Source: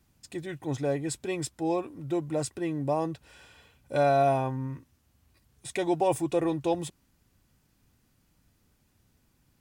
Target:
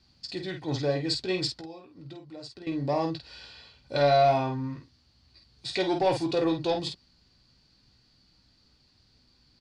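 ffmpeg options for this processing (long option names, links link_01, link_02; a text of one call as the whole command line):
ffmpeg -i in.wav -filter_complex "[0:a]asettb=1/sr,asplit=3[link_01][link_02][link_03];[link_01]atrim=end=1.604[link_04];[link_02]atrim=start=1.6:end=2.67,asetpts=PTS-STARTPTS,afade=type=in:duration=0.004:curve=qsin,afade=type=out:start_time=1.066:duration=0.004:curve=qsin,acompressor=threshold=-43dB:ratio=8[link_05];[link_03]atrim=start=2.666[link_06];[link_04][link_05]acrossfade=duration=0.004:curve1=hsin:curve2=qsin[link_07];[link_07][link_06]acrossfade=duration=0.004:curve1=qsin:curve2=hsin,asoftclip=type=tanh:threshold=-17dB,lowpass=frequency=4500:width_type=q:width=11,aecho=1:1:16|49:0.398|0.501" out.wav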